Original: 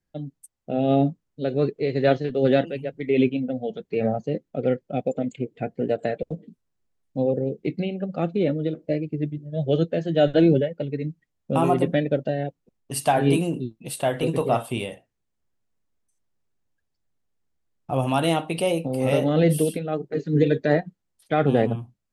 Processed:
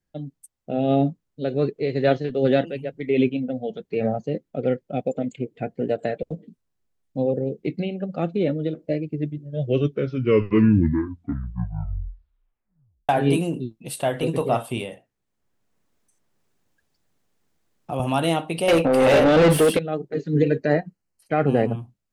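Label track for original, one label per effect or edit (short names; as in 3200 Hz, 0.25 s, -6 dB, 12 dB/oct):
9.390000	9.390000	tape stop 3.70 s
14.810000	18.000000	three-band squash depth 40%
18.680000	19.790000	overdrive pedal drive 26 dB, tone 2500 Hz, clips at -8 dBFS
20.420000	21.740000	Butterworth band-stop 3500 Hz, Q 4.2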